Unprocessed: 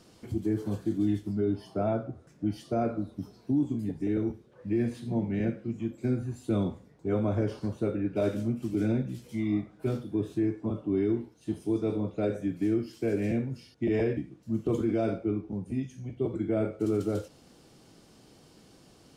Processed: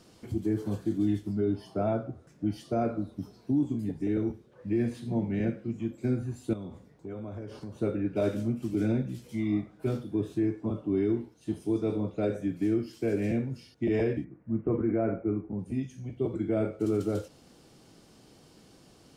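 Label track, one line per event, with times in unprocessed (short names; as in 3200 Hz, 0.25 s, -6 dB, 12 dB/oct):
6.530000	7.770000	compressor 5:1, threshold -37 dBFS
14.240000	15.590000	steep low-pass 2200 Hz 48 dB/oct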